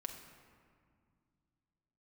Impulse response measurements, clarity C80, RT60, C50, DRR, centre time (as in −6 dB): 8.0 dB, 2.0 s, 6.5 dB, 2.5 dB, 37 ms